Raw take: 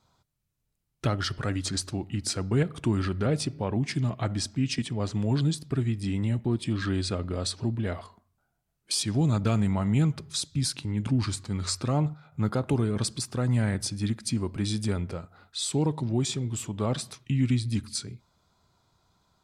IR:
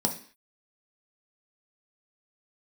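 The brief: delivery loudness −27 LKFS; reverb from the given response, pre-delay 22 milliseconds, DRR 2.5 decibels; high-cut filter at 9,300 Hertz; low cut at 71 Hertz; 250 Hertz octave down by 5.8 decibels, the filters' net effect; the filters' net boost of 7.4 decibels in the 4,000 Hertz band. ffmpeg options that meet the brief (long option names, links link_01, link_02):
-filter_complex "[0:a]highpass=71,lowpass=9300,equalizer=frequency=250:width_type=o:gain=-8,equalizer=frequency=4000:width_type=o:gain=9,asplit=2[link_01][link_02];[1:a]atrim=start_sample=2205,adelay=22[link_03];[link_02][link_03]afir=irnorm=-1:irlink=0,volume=-10.5dB[link_04];[link_01][link_04]amix=inputs=2:normalize=0,volume=-1.5dB"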